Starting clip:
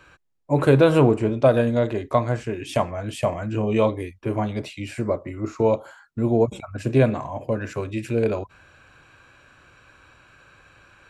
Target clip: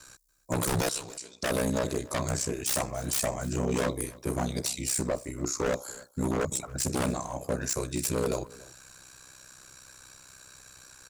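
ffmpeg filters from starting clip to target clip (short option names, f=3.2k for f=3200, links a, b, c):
-filter_complex "[0:a]asettb=1/sr,asplit=3[a][b][c];[a]atrim=end=0.894[d];[b]atrim=start=0.89:end=1.43,asetpts=PTS-STARTPTS,afade=t=in:d=0.004:c=qsin,afade=t=out:st=0.536:d=0.004:c=qsin,bandpass=f=4.5k:t=q:w=1.6:csg=0[e];[c]atrim=start=1.426[f];[d][e]acrossfade=d=0.004:c1=hsin:c2=qsin[g];[g][f]acrossfade=d=0.004:c1=qsin:c2=hsin,asoftclip=type=tanh:threshold=-13dB,aexciter=amount=15.8:drive=3:freq=4.4k,aeval=exprs='0.119*(abs(mod(val(0)/0.119+3,4)-2)-1)':c=same,aeval=exprs='val(0)*sin(2*PI*32*n/s)':c=same,aecho=1:1:286:0.0841,volume=-1.5dB"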